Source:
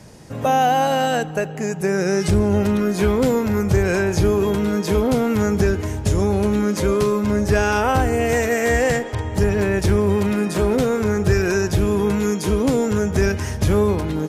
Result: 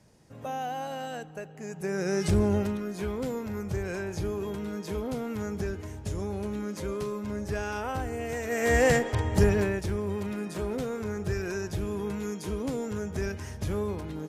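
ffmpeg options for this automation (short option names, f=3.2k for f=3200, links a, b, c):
-af "volume=5.5dB,afade=t=in:st=1.57:d=0.87:silence=0.281838,afade=t=out:st=2.44:d=0.35:silence=0.375837,afade=t=in:st=8.43:d=0.43:silence=0.266073,afade=t=out:st=9.42:d=0.4:silence=0.298538"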